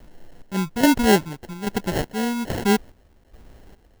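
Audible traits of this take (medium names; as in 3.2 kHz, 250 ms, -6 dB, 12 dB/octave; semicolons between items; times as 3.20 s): phasing stages 8, 3.7 Hz, lowest notch 570–2900 Hz; a quantiser's noise floor 10-bit, dither triangular; chopped level 1.2 Hz, depth 65%, duty 50%; aliases and images of a low sample rate 1.2 kHz, jitter 0%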